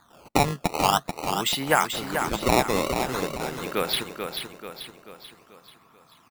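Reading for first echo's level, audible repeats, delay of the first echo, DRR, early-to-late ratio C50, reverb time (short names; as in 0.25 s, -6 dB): -6.5 dB, 5, 0.437 s, none, none, none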